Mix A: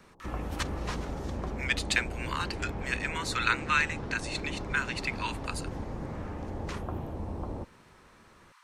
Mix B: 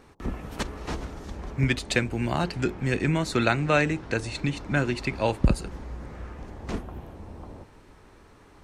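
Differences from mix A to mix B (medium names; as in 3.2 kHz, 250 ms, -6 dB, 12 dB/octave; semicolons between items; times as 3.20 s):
speech: remove steep high-pass 930 Hz 96 dB/octave; background -6.0 dB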